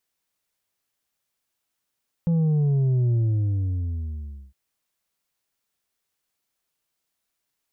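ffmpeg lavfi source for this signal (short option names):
-f lavfi -i "aevalsrc='0.119*clip((2.26-t)/1.4,0,1)*tanh(1.68*sin(2*PI*170*2.26/log(65/170)*(exp(log(65/170)*t/2.26)-1)))/tanh(1.68)':d=2.26:s=44100"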